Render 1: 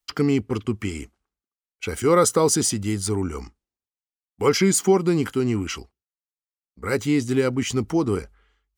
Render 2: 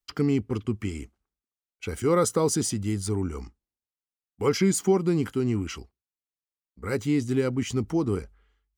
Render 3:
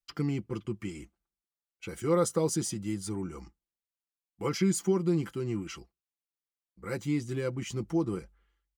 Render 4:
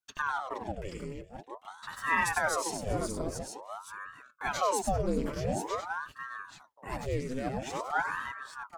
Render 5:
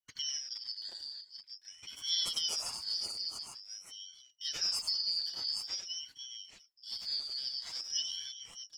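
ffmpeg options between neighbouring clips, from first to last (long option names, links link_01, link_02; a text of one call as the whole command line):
ffmpeg -i in.wav -af "lowshelf=frequency=350:gain=6,volume=-7dB" out.wav
ffmpeg -i in.wav -af "aecho=1:1:5.9:0.64,volume=-7dB" out.wav
ffmpeg -i in.wav -af "aecho=1:1:71|96|387|798|829:0.188|0.531|0.106|0.158|0.447,aeval=exprs='val(0)*sin(2*PI*800*n/s+800*0.85/0.48*sin(2*PI*0.48*n/s))':channel_layout=same" out.wav
ffmpeg -i in.wav -af "afftfilt=real='real(if(lt(b,272),68*(eq(floor(b/68),0)*3+eq(floor(b/68),1)*2+eq(floor(b/68),2)*1+eq(floor(b/68),3)*0)+mod(b,68),b),0)':imag='imag(if(lt(b,272),68*(eq(floor(b/68),0)*3+eq(floor(b/68),1)*2+eq(floor(b/68),2)*1+eq(floor(b/68),3)*0)+mod(b,68),b),0)':win_size=2048:overlap=0.75,volume=-5dB" out.wav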